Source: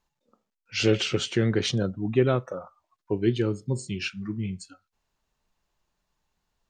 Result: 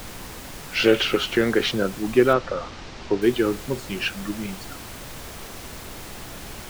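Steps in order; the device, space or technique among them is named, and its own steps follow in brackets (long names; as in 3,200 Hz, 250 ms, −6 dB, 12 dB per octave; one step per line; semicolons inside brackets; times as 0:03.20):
horn gramophone (band-pass filter 260–3,800 Hz; parametric band 1,400 Hz +5 dB; tape wow and flutter; pink noise bed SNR 12 dB)
0:02.33–0:03.22: low-pass filter 5,700 Hz 24 dB per octave
level +6 dB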